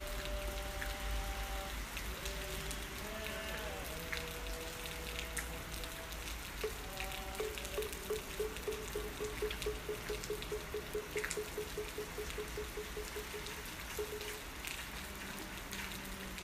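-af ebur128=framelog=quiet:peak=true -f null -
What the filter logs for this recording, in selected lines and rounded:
Integrated loudness:
  I:         -42.0 LUFS
  Threshold: -52.0 LUFS
Loudness range:
  LRA:         2.0 LU
  Threshold: -62.0 LUFS
  LRA low:   -43.1 LUFS
  LRA high:  -41.1 LUFS
True peak:
  Peak:      -17.5 dBFS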